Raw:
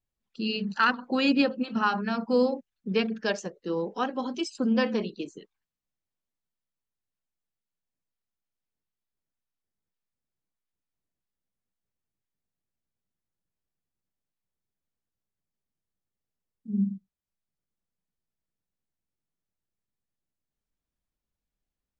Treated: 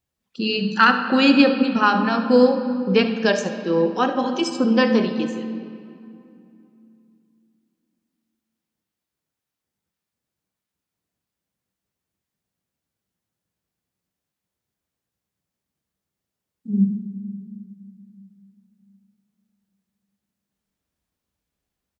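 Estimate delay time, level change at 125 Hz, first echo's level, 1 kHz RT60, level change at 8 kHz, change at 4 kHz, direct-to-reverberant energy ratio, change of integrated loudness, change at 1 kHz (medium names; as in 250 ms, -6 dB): 72 ms, +9.0 dB, -15.0 dB, 2.6 s, no reading, +8.5 dB, 7.0 dB, +8.5 dB, +9.0 dB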